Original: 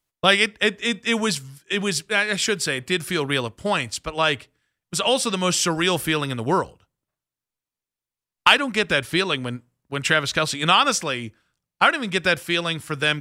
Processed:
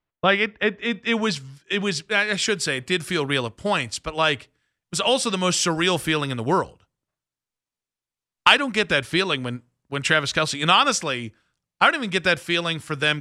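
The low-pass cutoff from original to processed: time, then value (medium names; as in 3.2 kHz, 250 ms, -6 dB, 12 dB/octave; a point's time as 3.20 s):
0.74 s 2.3 kHz
1.41 s 5.7 kHz
2.02 s 5.7 kHz
2.61 s 9.7 kHz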